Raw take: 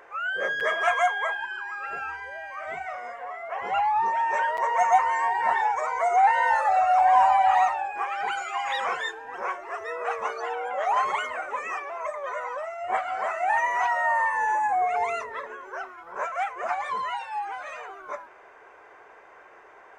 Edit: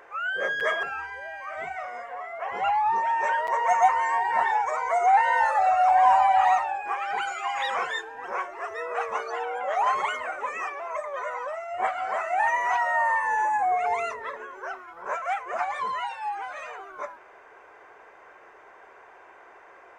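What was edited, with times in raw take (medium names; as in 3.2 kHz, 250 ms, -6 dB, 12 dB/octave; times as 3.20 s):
0.83–1.93 s: delete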